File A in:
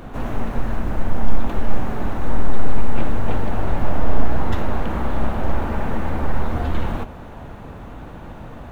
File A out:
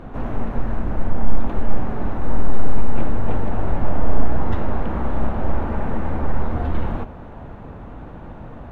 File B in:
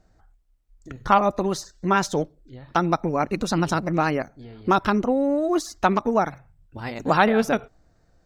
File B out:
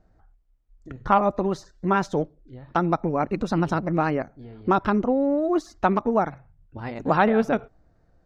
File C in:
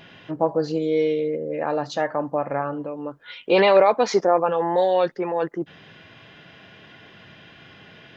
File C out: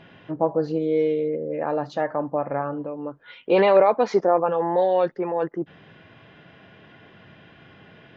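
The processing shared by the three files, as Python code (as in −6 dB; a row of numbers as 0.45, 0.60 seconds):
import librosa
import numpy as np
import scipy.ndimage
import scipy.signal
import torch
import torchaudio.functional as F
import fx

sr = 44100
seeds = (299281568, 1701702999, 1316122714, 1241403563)

y = fx.lowpass(x, sr, hz=1500.0, slope=6)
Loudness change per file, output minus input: −0.5, −1.0, −1.0 LU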